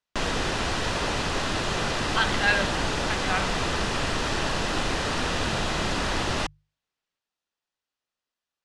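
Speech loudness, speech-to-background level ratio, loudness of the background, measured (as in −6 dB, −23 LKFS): −27.5 LKFS, −0.5 dB, −27.0 LKFS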